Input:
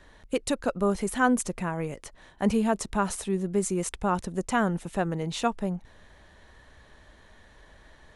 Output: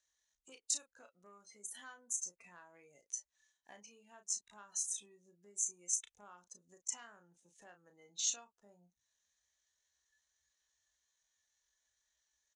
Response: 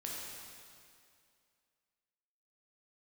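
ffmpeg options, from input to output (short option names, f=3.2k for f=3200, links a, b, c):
-filter_complex "[0:a]afftdn=nr=22:nf=-39,acompressor=threshold=-36dB:ratio=12,asoftclip=type=tanh:threshold=-25dB,atempo=0.65,bandpass=f=6.4k:t=q:w=5.8:csg=0,asplit=2[a][b];[b]adelay=34,volume=-8dB[c];[a][c]amix=inputs=2:normalize=0,volume=17dB"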